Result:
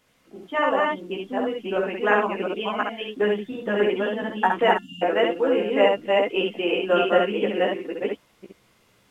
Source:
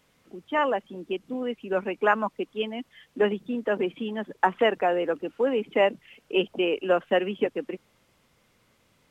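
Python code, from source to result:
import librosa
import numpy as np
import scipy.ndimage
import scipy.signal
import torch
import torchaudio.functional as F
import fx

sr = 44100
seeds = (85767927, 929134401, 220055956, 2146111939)

p1 = fx.reverse_delay(x, sr, ms=352, wet_db=-1.0)
p2 = fx.low_shelf(p1, sr, hz=190.0, db=-3.5)
p3 = p2 + fx.room_early_taps(p2, sr, ms=(15, 67, 77), db=(-3.5, -3.5, -8.0), dry=0)
p4 = fx.spec_erase(p3, sr, start_s=4.78, length_s=0.24, low_hz=290.0, high_hz=2700.0)
p5 = fx.comb_fb(p4, sr, f0_hz=350.0, decay_s=0.2, harmonics='all', damping=0.0, mix_pct=40)
y = p5 * 10.0 ** (3.0 / 20.0)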